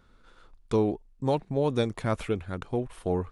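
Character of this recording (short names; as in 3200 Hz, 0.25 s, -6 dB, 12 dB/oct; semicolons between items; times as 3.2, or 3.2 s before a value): noise floor -60 dBFS; spectral tilt -7.0 dB/oct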